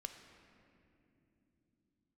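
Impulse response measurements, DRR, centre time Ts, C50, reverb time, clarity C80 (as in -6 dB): 6.0 dB, 37 ms, 7.5 dB, 2.9 s, 8.0 dB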